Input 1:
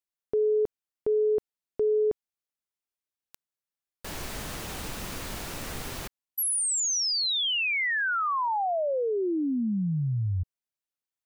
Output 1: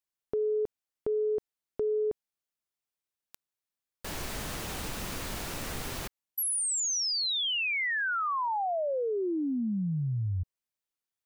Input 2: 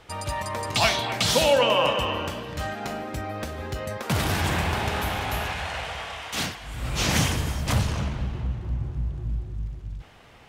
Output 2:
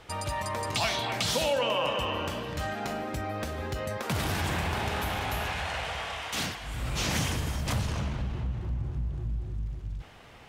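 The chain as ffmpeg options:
-af "acompressor=threshold=-31dB:ratio=2:attack=11:release=67:detection=rms"

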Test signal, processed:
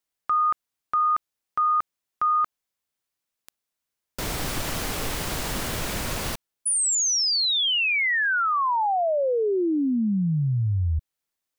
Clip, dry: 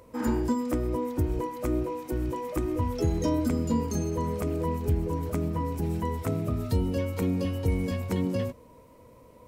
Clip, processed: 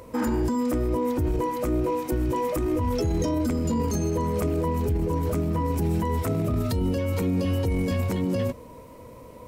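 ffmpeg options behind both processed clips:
-af "alimiter=level_in=2.5dB:limit=-24dB:level=0:latency=1:release=14,volume=-2.5dB,volume=8.5dB"

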